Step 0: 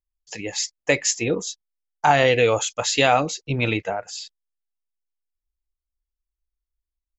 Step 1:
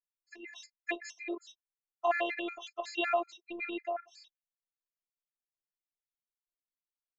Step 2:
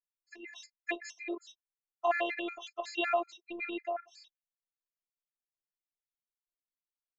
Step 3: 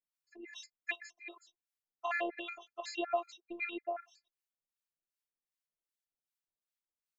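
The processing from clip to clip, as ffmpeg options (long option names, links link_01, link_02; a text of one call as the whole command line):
ffmpeg -i in.wav -filter_complex "[0:a]afftfilt=real='hypot(re,im)*cos(PI*b)':imag='0':win_size=512:overlap=0.75,acrossover=split=330 3300:gain=0.0708 1 0.0891[link_01][link_02][link_03];[link_01][link_02][link_03]amix=inputs=3:normalize=0,afftfilt=real='re*gt(sin(2*PI*5.4*pts/sr)*(1-2*mod(floor(b*sr/1024/1300),2)),0)':imag='im*gt(sin(2*PI*5.4*pts/sr)*(1-2*mod(floor(b*sr/1024/1300),2)),0)':win_size=1024:overlap=0.75,volume=-5dB" out.wav
ffmpeg -i in.wav -af anull out.wav
ffmpeg -i in.wav -filter_complex "[0:a]acrossover=split=1000[link_01][link_02];[link_01]aeval=exprs='val(0)*(1-1/2+1/2*cos(2*PI*2.6*n/s))':channel_layout=same[link_03];[link_02]aeval=exprs='val(0)*(1-1/2-1/2*cos(2*PI*2.6*n/s))':channel_layout=same[link_04];[link_03][link_04]amix=inputs=2:normalize=0,volume=1.5dB" out.wav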